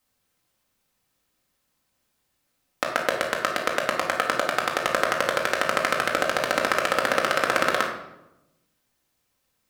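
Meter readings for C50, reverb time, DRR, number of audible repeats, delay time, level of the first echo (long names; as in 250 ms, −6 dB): 5.0 dB, 0.90 s, −1.0 dB, no echo audible, no echo audible, no echo audible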